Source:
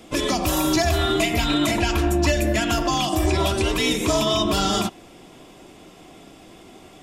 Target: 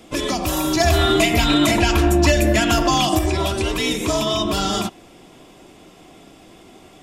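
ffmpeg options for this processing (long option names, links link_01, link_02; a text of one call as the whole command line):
ffmpeg -i in.wav -filter_complex "[0:a]asettb=1/sr,asplit=3[link_01][link_02][link_03];[link_01]atrim=end=0.804[link_04];[link_02]atrim=start=0.8:end=3.19,asetpts=PTS-STARTPTS,afade=type=in:duration=0.004:curve=qsin,afade=type=out:start_time=2.386:duration=0.004:curve=qsin,acontrast=21[link_05];[link_03]atrim=start=3.186[link_06];[link_04][link_05]acrossfade=duration=0.004:curve1=hsin:curve2=qsin[link_07];[link_07][link_06]acrossfade=duration=0.004:curve1=qsin:curve2=hsin" out.wav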